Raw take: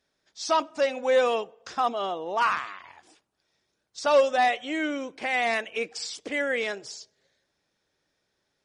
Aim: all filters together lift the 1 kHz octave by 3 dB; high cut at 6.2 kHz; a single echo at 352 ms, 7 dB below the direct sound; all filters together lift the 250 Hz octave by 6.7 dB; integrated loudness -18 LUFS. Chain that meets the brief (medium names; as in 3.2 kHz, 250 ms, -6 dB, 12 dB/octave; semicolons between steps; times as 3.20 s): low-pass 6.2 kHz; peaking EQ 250 Hz +8 dB; peaking EQ 1 kHz +3.5 dB; delay 352 ms -7 dB; trim +5.5 dB